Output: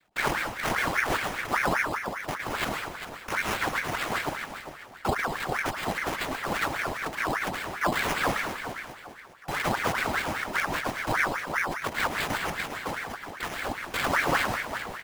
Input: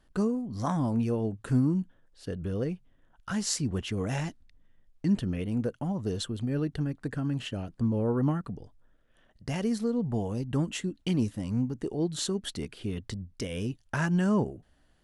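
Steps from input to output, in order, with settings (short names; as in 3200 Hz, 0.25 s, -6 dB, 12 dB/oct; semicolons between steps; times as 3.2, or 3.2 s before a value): notches 50/100/150/200/250 Hz; reverb removal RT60 1.6 s; noise vocoder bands 3; frequency-shifting echo 0.401 s, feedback 33%, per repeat -47 Hz, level -10 dB; in parallel at -2 dB: limiter -22.5 dBFS, peak gain reduction 8.5 dB; on the sum: sample-and-hold 11×; reverb RT60 0.80 s, pre-delay 0.104 s, DRR 4 dB; ring modulator with a swept carrier 1200 Hz, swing 65%, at 5 Hz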